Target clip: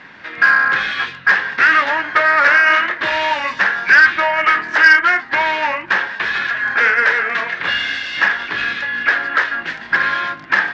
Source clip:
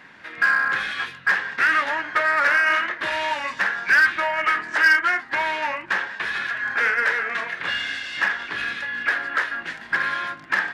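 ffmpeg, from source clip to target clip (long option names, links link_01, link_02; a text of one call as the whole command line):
ffmpeg -i in.wav -af "lowpass=frequency=5900:width=0.5412,lowpass=frequency=5900:width=1.3066,volume=7dB" out.wav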